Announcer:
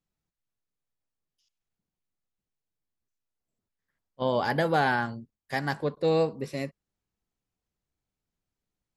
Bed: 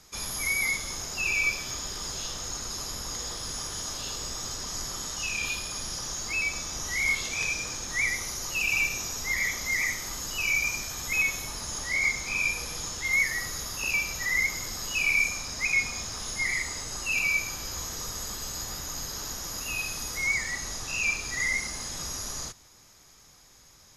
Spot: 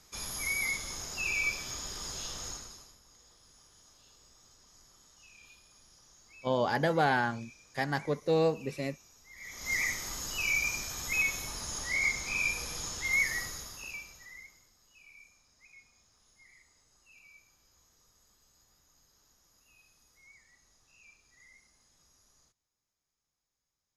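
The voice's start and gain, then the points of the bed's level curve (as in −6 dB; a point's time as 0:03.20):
2.25 s, −2.5 dB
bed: 0:02.49 −5 dB
0:03.00 −26 dB
0:09.31 −26 dB
0:09.72 −3.5 dB
0:13.38 −3.5 dB
0:14.75 −32 dB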